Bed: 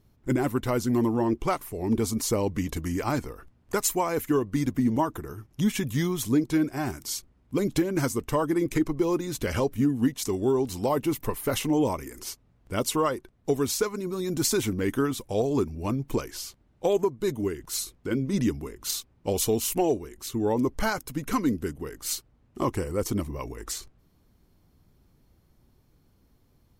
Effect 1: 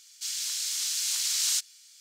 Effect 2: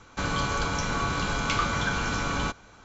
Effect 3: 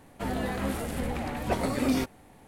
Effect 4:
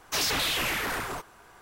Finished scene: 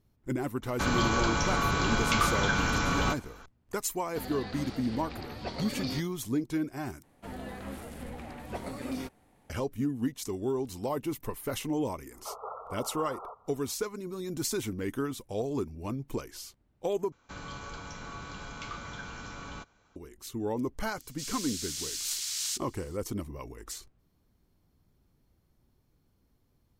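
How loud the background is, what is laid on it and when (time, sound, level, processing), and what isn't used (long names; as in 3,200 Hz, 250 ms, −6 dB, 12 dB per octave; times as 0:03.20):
bed −7 dB
0:00.62: mix in 2
0:03.95: mix in 3 −10 dB + low-pass with resonance 4,600 Hz, resonance Q 5.7
0:07.03: overwrite with 3 −10 dB
0:12.13: mix in 4 −5.5 dB + linear-phase brick-wall band-pass 400–1,400 Hz
0:17.12: overwrite with 2 −14.5 dB
0:20.97: mix in 1 −6.5 dB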